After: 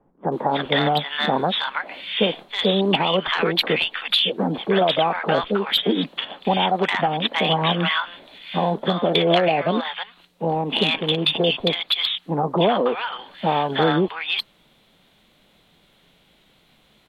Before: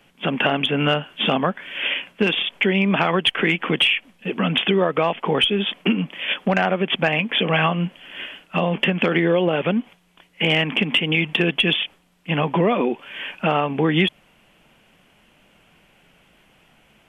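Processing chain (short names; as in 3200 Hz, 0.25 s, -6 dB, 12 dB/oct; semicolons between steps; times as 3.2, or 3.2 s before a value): dynamic EQ 690 Hz, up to +5 dB, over -32 dBFS, Q 0.84; bands offset in time lows, highs 0.32 s, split 870 Hz; formant shift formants +4 st; gain -1.5 dB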